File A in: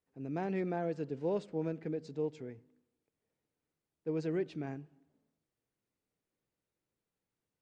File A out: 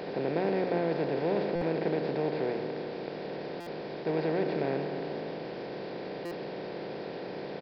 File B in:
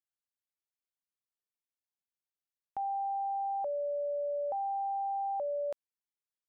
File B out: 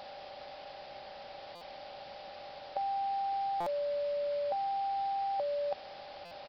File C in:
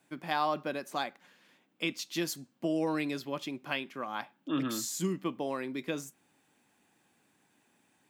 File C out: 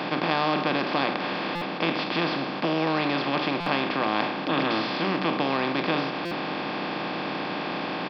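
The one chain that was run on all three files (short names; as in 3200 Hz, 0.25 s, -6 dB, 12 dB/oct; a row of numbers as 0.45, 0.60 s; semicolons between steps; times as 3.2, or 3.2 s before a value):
per-bin compression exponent 0.2; HPF 76 Hz 12 dB/oct; notches 60/120/180/240/300/360/420 Hz; requantised 8-bit, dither triangular; downsampling 11025 Hz; stuck buffer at 1.55/3.6/6.25, samples 256, times 10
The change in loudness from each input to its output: +4.5, 0.0, +8.5 LU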